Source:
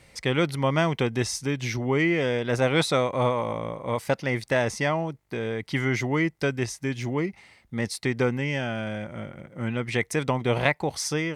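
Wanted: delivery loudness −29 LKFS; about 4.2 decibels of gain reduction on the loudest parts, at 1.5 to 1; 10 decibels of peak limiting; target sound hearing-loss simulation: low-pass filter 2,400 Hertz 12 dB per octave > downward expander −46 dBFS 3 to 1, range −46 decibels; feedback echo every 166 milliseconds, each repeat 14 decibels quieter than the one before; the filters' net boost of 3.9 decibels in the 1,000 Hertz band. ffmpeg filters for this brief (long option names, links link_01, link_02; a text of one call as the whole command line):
ffmpeg -i in.wav -af "equalizer=frequency=1000:width_type=o:gain=5,acompressor=threshold=-28dB:ratio=1.5,alimiter=limit=-17.5dB:level=0:latency=1,lowpass=2400,aecho=1:1:166|332:0.2|0.0399,agate=range=-46dB:threshold=-46dB:ratio=3,volume=1dB" out.wav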